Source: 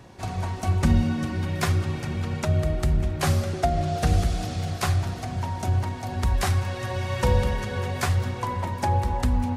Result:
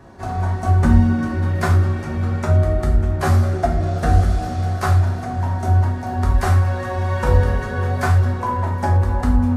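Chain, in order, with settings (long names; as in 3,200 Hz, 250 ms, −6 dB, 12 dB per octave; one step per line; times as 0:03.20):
high shelf with overshoot 2,000 Hz −7 dB, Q 1.5
reverb whose tail is shaped and stops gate 140 ms falling, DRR −1 dB
level +1.5 dB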